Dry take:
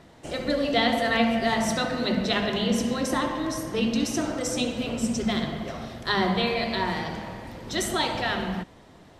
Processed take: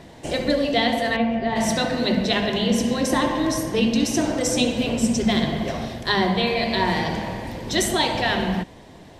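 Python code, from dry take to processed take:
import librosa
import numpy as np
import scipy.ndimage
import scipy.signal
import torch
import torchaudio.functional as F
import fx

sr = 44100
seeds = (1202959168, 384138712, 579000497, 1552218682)

y = fx.peak_eq(x, sr, hz=1300.0, db=-10.0, octaves=0.26)
y = fx.rider(y, sr, range_db=3, speed_s=0.5)
y = fx.spacing_loss(y, sr, db_at_10k=29, at=(1.15, 1.55), fade=0.02)
y = y * 10.0 ** (5.0 / 20.0)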